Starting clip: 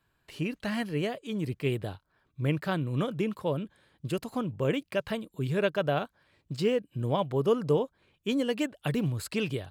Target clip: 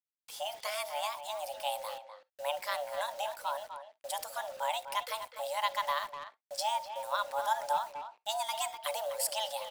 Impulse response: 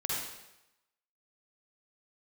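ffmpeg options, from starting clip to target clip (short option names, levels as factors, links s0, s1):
-filter_complex "[0:a]bass=f=250:g=-3,treble=f=4000:g=14,bandreject=f=60:t=h:w=6,bandreject=f=120:t=h:w=6,bandreject=f=180:t=h:w=6,bandreject=f=240:t=h:w=6,bandreject=f=300:t=h:w=6,bandreject=f=360:t=h:w=6,bandreject=f=420:t=h:w=6,bandreject=f=480:t=h:w=6,asubboost=boost=5:cutoff=79,afreqshift=430,acrusher=bits=7:mix=0:aa=0.000001,asplit=2[s0][s1];[s1]adelay=250,highpass=300,lowpass=3400,asoftclip=type=hard:threshold=0.0668,volume=0.355[s2];[s0][s2]amix=inputs=2:normalize=0,asplit=2[s3][s4];[1:a]atrim=start_sample=2205,atrim=end_sample=3087[s5];[s4][s5]afir=irnorm=-1:irlink=0,volume=0.106[s6];[s3][s6]amix=inputs=2:normalize=0,volume=0.562"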